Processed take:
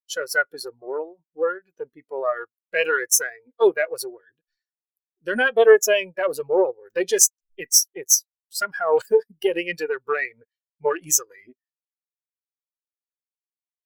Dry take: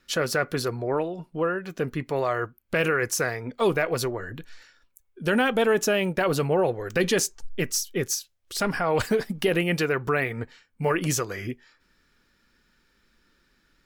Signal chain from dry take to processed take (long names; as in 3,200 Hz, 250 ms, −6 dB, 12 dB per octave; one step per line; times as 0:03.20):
gain on one half-wave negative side −12 dB
RIAA equalisation recording
every bin expanded away from the loudest bin 2.5 to 1
level +1.5 dB